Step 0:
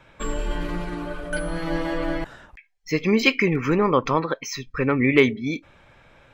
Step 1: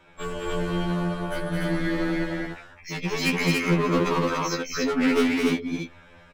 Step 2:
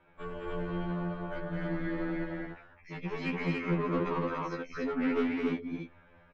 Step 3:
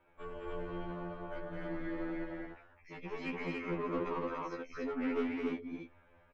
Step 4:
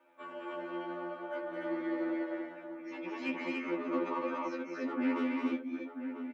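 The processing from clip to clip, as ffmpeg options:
-af "asoftclip=type=hard:threshold=-20.5dB,aecho=1:1:215.7|285.7:0.631|0.794,afftfilt=real='re*2*eq(mod(b,4),0)':imag='im*2*eq(mod(b,4),0)':win_size=2048:overlap=0.75,volume=1dB"
-af "lowpass=2.1k,volume=-8dB"
-af "equalizer=f=160:t=o:w=0.67:g=-9,equalizer=f=1.6k:t=o:w=0.67:g=-3,equalizer=f=4k:t=o:w=0.67:g=-4,volume=-3.5dB"
-filter_complex "[0:a]highpass=f=210:w=0.5412,highpass=f=210:w=1.3066,aecho=1:1:3.4:0.95,asplit=2[a][b];[b]adelay=991.3,volume=-8dB,highshelf=f=4k:g=-22.3[c];[a][c]amix=inputs=2:normalize=0"

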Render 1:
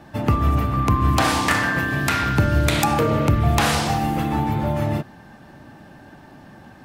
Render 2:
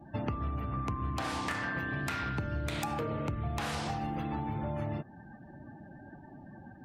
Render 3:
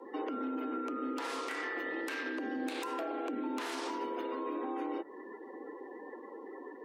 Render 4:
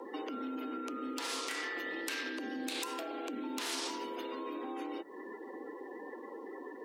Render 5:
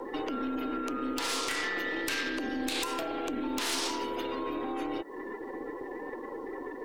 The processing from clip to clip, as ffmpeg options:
-af "afftdn=nr=25:nf=-42,highshelf=f=7k:g=-5.5,acompressor=threshold=-28dB:ratio=6,volume=-4dB"
-af "alimiter=level_in=8dB:limit=-24dB:level=0:latency=1:release=116,volume=-8dB,afreqshift=190,volume=3dB"
-filter_complex "[0:a]acrossover=split=130|3000[a][b][c];[b]acompressor=threshold=-59dB:ratio=2[d];[a][d][c]amix=inputs=3:normalize=0,volume=9dB"
-af "aeval=exprs='(tanh(31.6*val(0)+0.5)-tanh(0.5))/31.6':c=same,volume=8.5dB"

